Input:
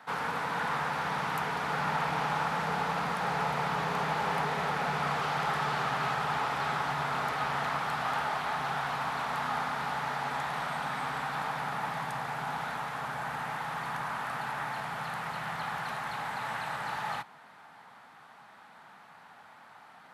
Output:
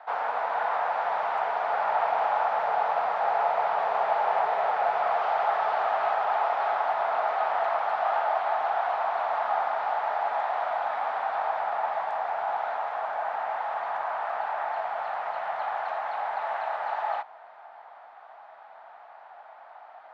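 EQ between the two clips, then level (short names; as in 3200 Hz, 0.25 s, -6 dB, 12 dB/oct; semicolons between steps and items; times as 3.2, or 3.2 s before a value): resonant high-pass 670 Hz, resonance Q 4.9; air absorption 130 m; high shelf 4700 Hz -11 dB; 0.0 dB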